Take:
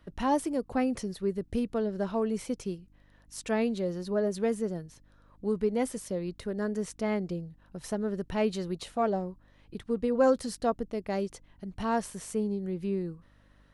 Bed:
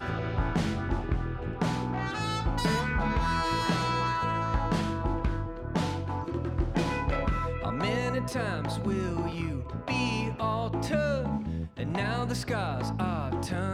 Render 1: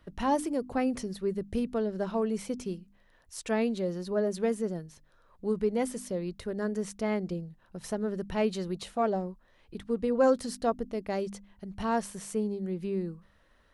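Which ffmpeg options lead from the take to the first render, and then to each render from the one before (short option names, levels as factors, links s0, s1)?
-af "bandreject=f=50:t=h:w=4,bandreject=f=100:t=h:w=4,bandreject=f=150:t=h:w=4,bandreject=f=200:t=h:w=4,bandreject=f=250:t=h:w=4,bandreject=f=300:t=h:w=4"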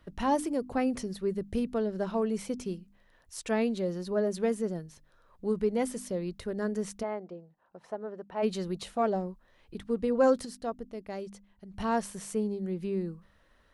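-filter_complex "[0:a]asplit=3[s0][s1][s2];[s0]afade=t=out:st=7.02:d=0.02[s3];[s1]bandpass=f=790:t=q:w=1.2,afade=t=in:st=7.02:d=0.02,afade=t=out:st=8.42:d=0.02[s4];[s2]afade=t=in:st=8.42:d=0.02[s5];[s3][s4][s5]amix=inputs=3:normalize=0,asplit=3[s6][s7][s8];[s6]atrim=end=10.452[s9];[s7]atrim=start=10.448:end=11.742,asetpts=PTS-STARTPTS,volume=0.473[s10];[s8]atrim=start=11.738[s11];[s9][s10]acrossfade=d=0.004:c1=hsin:c2=hsin[s12];[s12][s11]acrossfade=d=0.004:c1=hsin:c2=hsin"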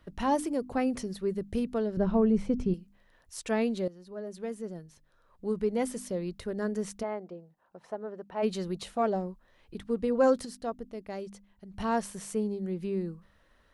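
-filter_complex "[0:a]asettb=1/sr,asplit=3[s0][s1][s2];[s0]atrim=end=1.974[s3];[s1]atrim=start=1.97:end=2.74,asetpts=PTS-STARTPTS,afade=t=in:d=0.004:c=qsin,afade=t=out:st=0.766:d=0.004:c=qsin,aemphasis=mode=reproduction:type=riaa[s4];[s2]atrim=start=2.736[s5];[s3][s4]acrossfade=d=0.004:c1=hsin:c2=qsin[s6];[s6][s5]acrossfade=d=0.004:c1=qsin:c2=hsin,asplit=2[s7][s8];[s7]atrim=end=3.88,asetpts=PTS-STARTPTS,afade=t=out:st=3.876:d=0.004:c=hsin:silence=0.141254[s9];[s8]atrim=start=3.88,asetpts=PTS-STARTPTS,afade=t=in:d=1.99:silence=0.141254[s10];[s9][s10]concat=n=2:v=0:a=1"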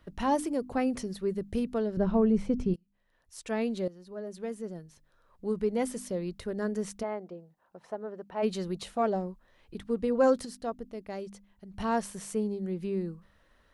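-filter_complex "[0:a]asplit=2[s0][s1];[s0]atrim=end=2.76,asetpts=PTS-STARTPTS,afade=t=out:st=2.756:d=0.004:c=hsin:silence=0.0707946[s2];[s1]atrim=start=2.76,asetpts=PTS-STARTPTS,afade=t=in:d=1.14:silence=0.0707946[s3];[s2][s3]concat=n=2:v=0:a=1"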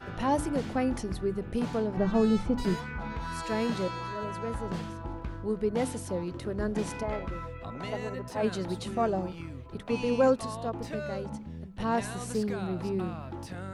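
-filter_complex "[1:a]volume=0.376[s0];[0:a][s0]amix=inputs=2:normalize=0"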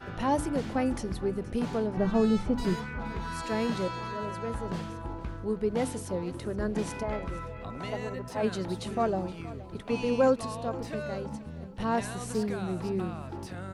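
-af "aecho=1:1:472|944|1416|1888:0.126|0.0541|0.0233|0.01"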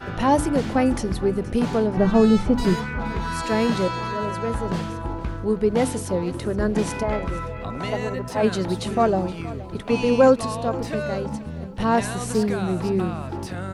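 -af "volume=2.66"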